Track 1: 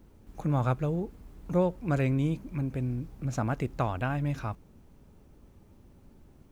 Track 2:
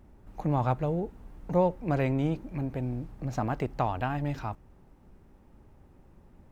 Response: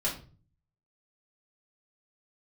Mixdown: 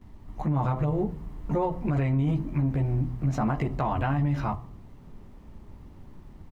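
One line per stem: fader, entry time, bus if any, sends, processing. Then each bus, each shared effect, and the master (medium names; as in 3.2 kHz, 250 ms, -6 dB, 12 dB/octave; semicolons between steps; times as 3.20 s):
-3.5 dB, 0.00 s, no send, level rider gain up to 8 dB; de-hum 64.54 Hz, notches 20
+1.5 dB, 14 ms, send -16 dB, band-stop 820 Hz, Q 12; comb 1 ms, depth 77%; bit crusher 11-bit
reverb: on, RT60 0.40 s, pre-delay 3 ms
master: treble shelf 3.8 kHz -11 dB; peak limiter -18 dBFS, peak gain reduction 11 dB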